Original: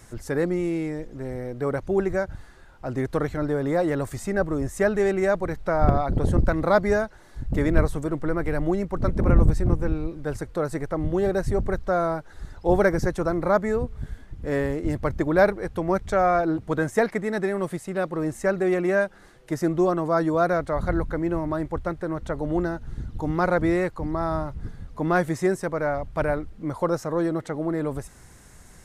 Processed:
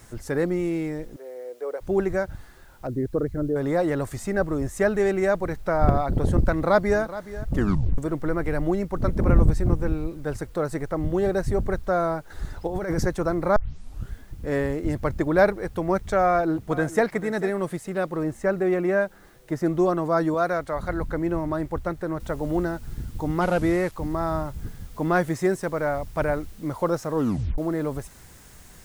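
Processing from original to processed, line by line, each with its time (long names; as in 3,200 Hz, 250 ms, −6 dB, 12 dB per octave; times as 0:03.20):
0:01.16–0:01.81: four-pole ladder high-pass 420 Hz, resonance 60%
0:02.87–0:03.56: spectral envelope exaggerated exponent 2
0:06.51–0:07.02: delay throw 420 ms, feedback 10%, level −15 dB
0:07.54: tape stop 0.44 s
0:12.30–0:13.03: compressor whose output falls as the input rises −26 dBFS
0:13.56: tape start 0.56 s
0:16.26–0:17.06: delay throw 440 ms, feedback 10%, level −16 dB
0:18.23–0:19.66: high-shelf EQ 3,200 Hz −8.5 dB
0:20.34–0:21.01: low-shelf EQ 480 Hz −6 dB
0:22.20: noise floor change −63 dB −55 dB
0:23.41–0:23.92: linear delta modulator 64 kbit/s, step −39.5 dBFS
0:27.14: tape stop 0.44 s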